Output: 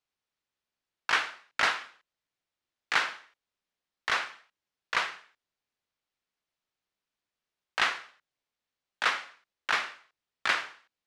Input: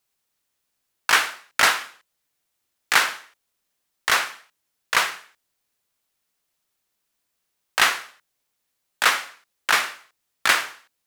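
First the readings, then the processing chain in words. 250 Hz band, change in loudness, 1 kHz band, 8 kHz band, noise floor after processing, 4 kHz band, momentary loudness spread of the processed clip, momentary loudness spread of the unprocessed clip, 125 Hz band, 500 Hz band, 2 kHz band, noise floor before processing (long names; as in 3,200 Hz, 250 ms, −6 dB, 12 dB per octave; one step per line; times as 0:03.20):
−8.0 dB, −9.0 dB, −8.0 dB, −16.5 dB, below −85 dBFS, −9.5 dB, 13 LU, 13 LU, can't be measured, −8.0 dB, −8.0 dB, −77 dBFS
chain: low-pass filter 4,600 Hz 12 dB per octave
level −8 dB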